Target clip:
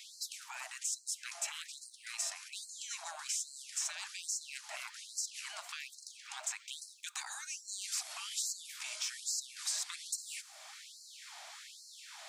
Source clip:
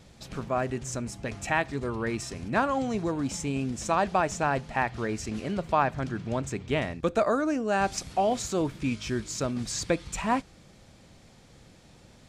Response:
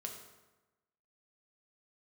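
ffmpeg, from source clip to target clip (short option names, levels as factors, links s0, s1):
-filter_complex "[0:a]afftfilt=real='re*lt(hypot(re,im),0.0501)':imag='im*lt(hypot(re,im),0.0501)':win_size=1024:overlap=0.75,acrossover=split=430|5500[s0][s1][s2];[s0]acompressor=threshold=0.00282:ratio=4[s3];[s1]acompressor=threshold=0.00141:ratio=4[s4];[s2]acompressor=threshold=0.00398:ratio=4[s5];[s3][s4][s5]amix=inputs=3:normalize=0,afftfilt=real='re*gte(b*sr/1024,570*pow(4100/570,0.5+0.5*sin(2*PI*1.2*pts/sr)))':imag='im*gte(b*sr/1024,570*pow(4100/570,0.5+0.5*sin(2*PI*1.2*pts/sr)))':win_size=1024:overlap=0.75,volume=3.55"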